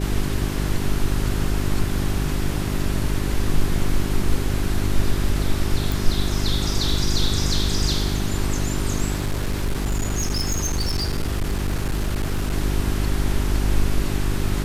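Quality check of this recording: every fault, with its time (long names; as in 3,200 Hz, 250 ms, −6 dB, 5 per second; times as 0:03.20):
mains hum 50 Hz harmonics 8 −25 dBFS
0:05.92: click
0:09.16–0:12.54: clipping −18.5 dBFS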